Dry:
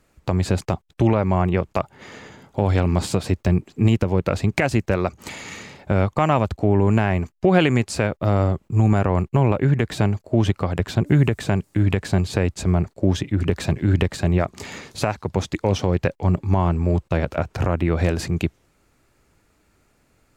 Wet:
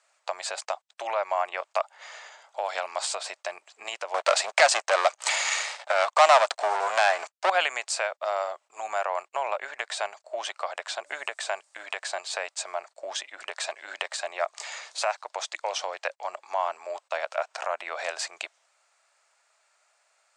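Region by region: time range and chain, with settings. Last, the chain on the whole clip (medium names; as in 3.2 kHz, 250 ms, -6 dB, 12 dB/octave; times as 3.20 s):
4.14–7.50 s: de-esser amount 50% + waveshaping leveller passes 3
whole clip: Chebyshev band-pass 620–8600 Hz, order 4; treble shelf 6.2 kHz +6.5 dB; trim -1.5 dB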